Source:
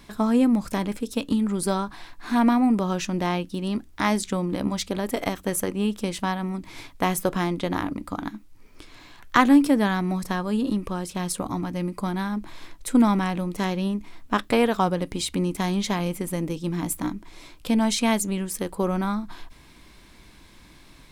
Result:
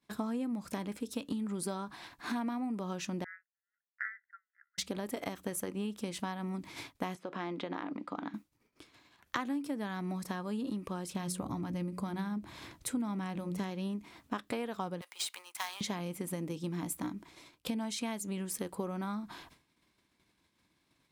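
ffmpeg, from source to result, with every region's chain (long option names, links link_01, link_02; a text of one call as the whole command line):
ffmpeg -i in.wav -filter_complex "[0:a]asettb=1/sr,asplit=3[link_01][link_02][link_03];[link_01]atrim=end=3.244[link_04];[link_02]atrim=start=3.24:end=4.78,asetpts=PTS-STARTPTS,afade=type=in:duration=0.004:curve=qsin,afade=type=out:start_time=1.536:duration=0.004:curve=qsin,asuperpass=centerf=1600:order=12:qfactor=2.5,afreqshift=72[link_05];[link_03]atrim=start=4.776[link_06];[link_04][link_05]acrossfade=duration=0.004:curve1=hsin:curve2=qsin[link_07];[link_07][link_06]acrossfade=duration=0.004:curve1=qsin:curve2=hsin,asettb=1/sr,asplit=3[link_08][link_09][link_10];[link_08]atrim=end=7.154[link_11];[link_09]atrim=start=7.15:end=8.34,asetpts=PTS-STARTPTS,afade=type=in:duration=0.004:curve=qsin,afade=type=out:start_time=1.186:duration=0.004:curve=qsin,acompressor=threshold=-28dB:ratio=4:attack=3.2:release=140:knee=1:detection=peak,highpass=250,lowpass=3500[link_12];[link_10]atrim=start=8.336[link_13];[link_11][link_12]acrossfade=duration=0.004:curve1=hsin:curve2=qsin[link_14];[link_14][link_13]acrossfade=duration=0.004:curve1=qsin:curve2=hsin,asettb=1/sr,asplit=3[link_15][link_16][link_17];[link_15]atrim=end=11.144[link_18];[link_16]atrim=start=11.14:end=13.71,asetpts=PTS-STARTPTS,afade=type=in:duration=0.004:curve=qsin,afade=type=out:start_time=2.566:duration=0.004:curve=qsin,equalizer=frequency=73:width_type=o:width=2.5:gain=10,bandreject=frequency=90.99:width_type=h:width=4,bandreject=frequency=181.98:width_type=h:width=4,bandreject=frequency=272.97:width_type=h:width=4,bandreject=frequency=363.96:width_type=h:width=4,bandreject=frequency=454.95:width_type=h:width=4,bandreject=frequency=545.94:width_type=h:width=4,bandreject=frequency=636.93:width_type=h:width=4[link_19];[link_17]atrim=start=13.706[link_20];[link_18][link_19]acrossfade=duration=0.004:curve1=hsin:curve2=qsin[link_21];[link_21][link_20]acrossfade=duration=0.004:curve1=qsin:curve2=hsin,asettb=1/sr,asplit=3[link_22][link_23][link_24];[link_22]atrim=end=15.014[link_25];[link_23]atrim=start=15.01:end=15.81,asetpts=PTS-STARTPTS,afade=type=in:duration=0.004:curve=qsin,afade=type=out:start_time=0.796:duration=0.004:curve=qsin,highpass=frequency=870:width=0.5412,highpass=frequency=870:width=1.3066,acrusher=bits=2:mode=log:mix=0:aa=0.000001[link_26];[link_24]atrim=start=15.806[link_27];[link_25][link_26]acrossfade=duration=0.004:curve1=hsin:curve2=qsin[link_28];[link_28][link_27]acrossfade=duration=0.004:curve1=qsin:curve2=hsin,agate=range=-33dB:threshold=-36dB:ratio=3:detection=peak,acompressor=threshold=-33dB:ratio=6,highpass=100,volume=-1dB" out.wav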